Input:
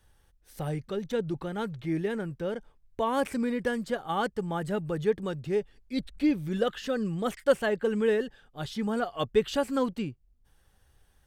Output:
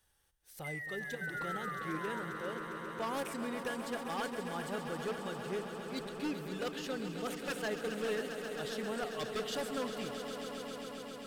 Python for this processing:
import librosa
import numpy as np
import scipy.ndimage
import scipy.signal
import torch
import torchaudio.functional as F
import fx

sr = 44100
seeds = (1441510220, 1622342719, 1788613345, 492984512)

y = fx.spec_paint(x, sr, seeds[0], shape='fall', start_s=0.64, length_s=1.56, low_hz=930.0, high_hz=2100.0, level_db=-37.0)
y = fx.over_compress(y, sr, threshold_db=-32.0, ratio=-0.5, at=(1.14, 1.71), fade=0.02)
y = fx.tilt_eq(y, sr, slope=2.0)
y = 10.0 ** (-23.0 / 20.0) * (np.abs((y / 10.0 ** (-23.0 / 20.0) + 3.0) % 4.0 - 2.0) - 1.0)
y = fx.echo_swell(y, sr, ms=134, loudest=5, wet_db=-11.0)
y = y * librosa.db_to_amplitude(-8.0)